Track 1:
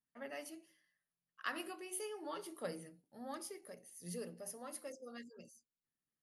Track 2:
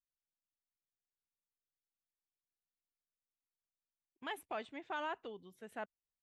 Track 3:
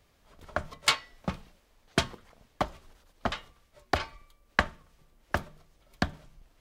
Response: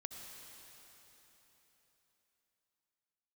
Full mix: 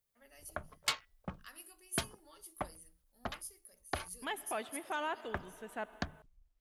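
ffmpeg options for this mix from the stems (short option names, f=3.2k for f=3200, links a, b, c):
-filter_complex "[0:a]crystalizer=i=4:c=0,volume=-17.5dB[a];[1:a]volume=0.5dB,asplit=2[b][c];[c]volume=-5.5dB[d];[2:a]afwtdn=0.00631,volume=-10.5dB,asplit=3[e][f][g];[e]atrim=end=4.58,asetpts=PTS-STARTPTS,afade=t=out:st=4.576:d=0.004:c=hsin[h];[f]atrim=start=4.58:end=5.25,asetpts=PTS-STARTPTS,volume=0[i];[g]atrim=start=5.25,asetpts=PTS-STARTPTS,afade=t=in:d=0.004:c=hsin[j];[h][i][j]concat=n=3:v=0:a=1[k];[3:a]atrim=start_sample=2205[l];[d][l]afir=irnorm=-1:irlink=0[m];[a][b][k][m]amix=inputs=4:normalize=0,highshelf=f=7.9k:g=8.5"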